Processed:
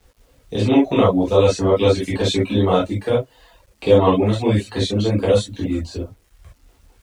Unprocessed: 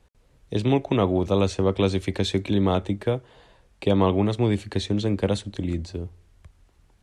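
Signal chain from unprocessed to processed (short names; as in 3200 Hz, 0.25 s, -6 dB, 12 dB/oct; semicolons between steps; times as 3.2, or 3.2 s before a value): non-linear reverb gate 90 ms flat, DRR -7.5 dB; reverb removal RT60 0.6 s; requantised 10-bit, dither none; gain -1 dB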